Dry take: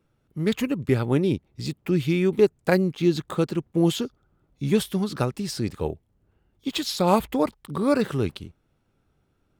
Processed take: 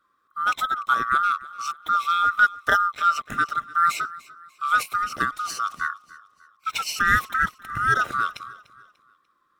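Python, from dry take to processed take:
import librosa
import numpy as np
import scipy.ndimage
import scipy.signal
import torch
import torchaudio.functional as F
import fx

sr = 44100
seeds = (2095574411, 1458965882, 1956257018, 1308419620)

p1 = fx.band_swap(x, sr, width_hz=1000)
y = p1 + fx.echo_feedback(p1, sr, ms=295, feedback_pct=39, wet_db=-19.5, dry=0)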